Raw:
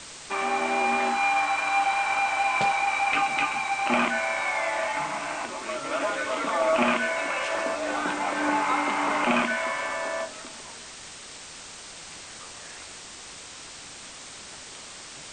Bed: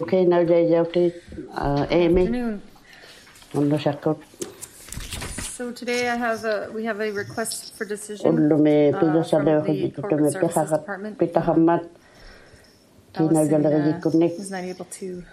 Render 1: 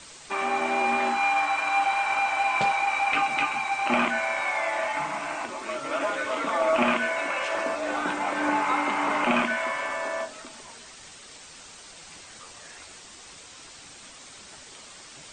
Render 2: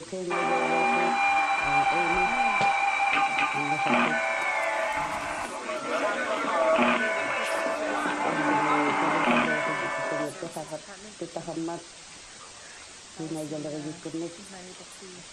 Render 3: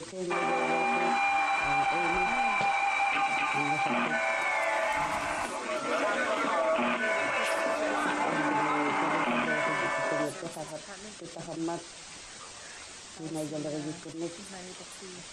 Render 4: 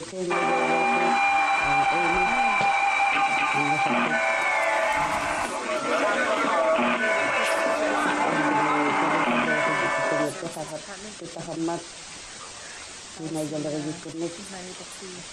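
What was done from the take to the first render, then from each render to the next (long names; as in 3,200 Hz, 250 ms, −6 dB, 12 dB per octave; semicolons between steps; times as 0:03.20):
broadband denoise 6 dB, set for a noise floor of −43 dBFS
mix in bed −15.5 dB
brickwall limiter −19.5 dBFS, peak gain reduction 9 dB; level that may rise only so fast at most 110 dB per second
level +5.5 dB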